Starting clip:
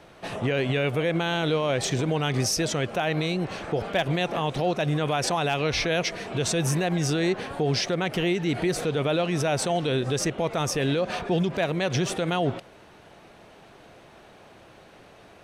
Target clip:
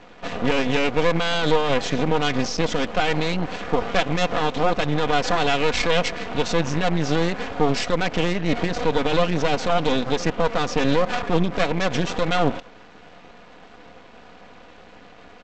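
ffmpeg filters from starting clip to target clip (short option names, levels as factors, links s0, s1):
-af "lowpass=3800,aecho=1:1:4.1:0.74,aresample=16000,aeval=exprs='max(val(0),0)':c=same,aresample=44100,volume=2.24"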